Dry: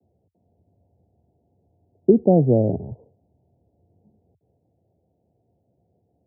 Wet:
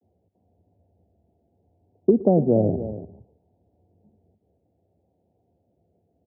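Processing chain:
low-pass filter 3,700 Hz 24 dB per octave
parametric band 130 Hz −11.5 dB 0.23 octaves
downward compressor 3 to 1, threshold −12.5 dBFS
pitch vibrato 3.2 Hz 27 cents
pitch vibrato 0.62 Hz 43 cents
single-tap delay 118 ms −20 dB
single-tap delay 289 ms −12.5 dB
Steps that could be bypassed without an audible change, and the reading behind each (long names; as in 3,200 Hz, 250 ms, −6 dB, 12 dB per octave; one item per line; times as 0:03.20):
low-pass filter 3,700 Hz: nothing at its input above 810 Hz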